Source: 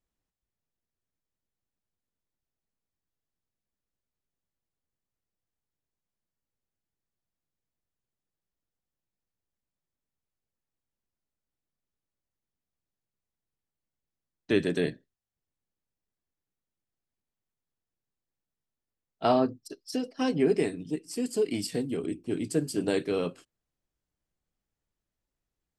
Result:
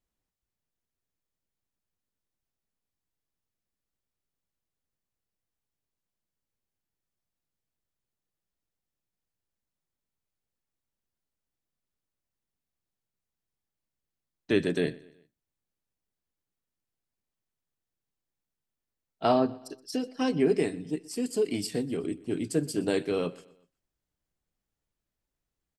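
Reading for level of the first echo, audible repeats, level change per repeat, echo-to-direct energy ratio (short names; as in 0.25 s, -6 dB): -22.0 dB, 2, -7.0 dB, -21.0 dB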